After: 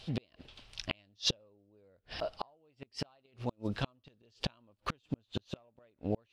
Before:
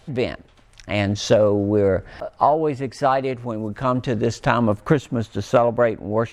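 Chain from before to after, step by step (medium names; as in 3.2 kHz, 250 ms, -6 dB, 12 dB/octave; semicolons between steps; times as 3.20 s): inverted gate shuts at -15 dBFS, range -40 dB; high-order bell 3.7 kHz +12 dB 1.3 oct; trim -6 dB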